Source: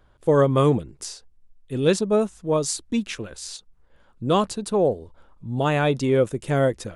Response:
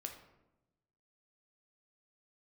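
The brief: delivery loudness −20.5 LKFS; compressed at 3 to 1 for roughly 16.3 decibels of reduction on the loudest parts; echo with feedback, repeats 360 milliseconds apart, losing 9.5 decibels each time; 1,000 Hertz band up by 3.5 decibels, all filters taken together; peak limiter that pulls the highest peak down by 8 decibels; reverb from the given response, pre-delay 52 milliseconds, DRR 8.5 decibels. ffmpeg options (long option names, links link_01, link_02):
-filter_complex "[0:a]equalizer=frequency=1000:width_type=o:gain=4.5,acompressor=threshold=-36dB:ratio=3,alimiter=level_in=4dB:limit=-24dB:level=0:latency=1,volume=-4dB,aecho=1:1:360|720|1080|1440:0.335|0.111|0.0365|0.012,asplit=2[link_01][link_02];[1:a]atrim=start_sample=2205,adelay=52[link_03];[link_02][link_03]afir=irnorm=-1:irlink=0,volume=-5.5dB[link_04];[link_01][link_04]amix=inputs=2:normalize=0,volume=17dB"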